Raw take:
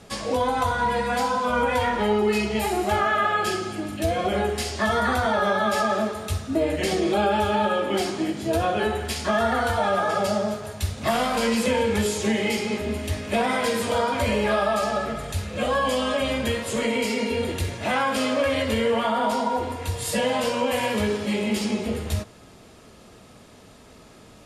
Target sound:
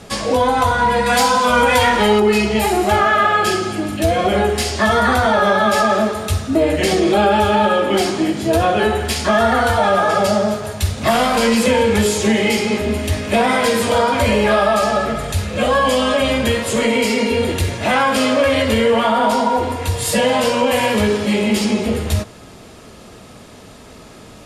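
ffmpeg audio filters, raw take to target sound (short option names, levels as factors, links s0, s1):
-filter_complex "[0:a]asettb=1/sr,asplit=3[s0][s1][s2];[s0]atrim=end=1.064[s3];[s1]atrim=start=1.06:end=2.2,asetpts=PTS-STARTPTS,afade=t=in:d=0.004:c=qsin,afade=t=out:st=1.136:d=0.004:c=qsin,highshelf=f=2200:g=9[s4];[s2]atrim=start=2.196[s5];[s3][s4]acrossfade=d=0.004:c1=hsin:c2=qsin[s6];[s6][s5]acrossfade=d=0.004:c1=qsin:c2=hsin,asplit=2[s7][s8];[s8]asoftclip=type=tanh:threshold=0.0708,volume=0.398[s9];[s7][s9]amix=inputs=2:normalize=0,volume=2"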